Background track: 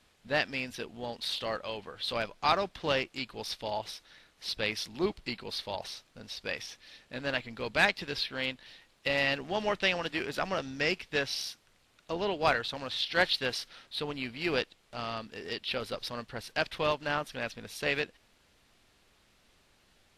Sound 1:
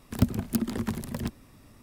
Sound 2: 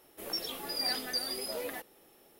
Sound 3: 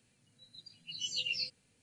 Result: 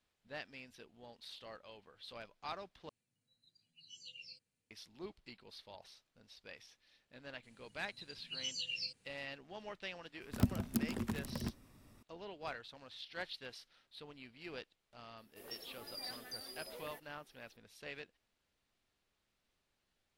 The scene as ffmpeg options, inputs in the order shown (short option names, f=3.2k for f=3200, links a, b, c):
-filter_complex "[3:a]asplit=2[a][b];[0:a]volume=-17.5dB[c];[b]alimiter=level_in=7dB:limit=-24dB:level=0:latency=1:release=271,volume=-7dB[d];[c]asplit=2[e][f];[e]atrim=end=2.894[g];[a]atrim=end=1.82,asetpts=PTS-STARTPTS,volume=-17.5dB[h];[f]atrim=start=4.706[i];[d]atrim=end=1.82,asetpts=PTS-STARTPTS,afade=t=in:d=0.004:c=hsin,afade=t=out:st=1.816:d=0.004:c=hsin,adelay=7430[j];[1:a]atrim=end=1.82,asetpts=PTS-STARTPTS,volume=-8.5dB,afade=t=in:d=0.004:c=hsin,afade=t=out:st=1.816:d=0.004:c=hsin,adelay=10210[k];[2:a]atrim=end=2.39,asetpts=PTS-STARTPTS,volume=-13.5dB,afade=t=in:d=0.004:c=hsin,afade=t=out:st=2.386:d=0.004:c=hsin,adelay=15180[l];[g][h]acrossfade=d=0.004:c1=hsin:c2=hsin[m];[m][i]acrossfade=d=0.004:c1=hsin:c2=hsin[n];[n][j][k][l]amix=inputs=4:normalize=0"